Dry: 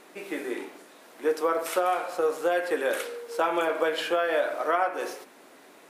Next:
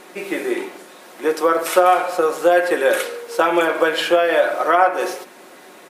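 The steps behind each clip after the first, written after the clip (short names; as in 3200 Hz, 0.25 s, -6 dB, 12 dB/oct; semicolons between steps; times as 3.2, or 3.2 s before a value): comb 5.5 ms, depth 40%; gain +9 dB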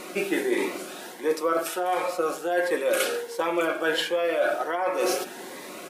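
reverse; compressor 10:1, threshold -25 dBFS, peak gain reduction 17 dB; reverse; cascading phaser rising 1.4 Hz; gain +5.5 dB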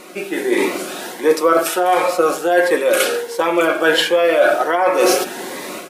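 AGC gain up to 13 dB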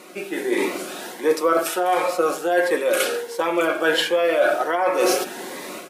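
HPF 98 Hz; gain -5 dB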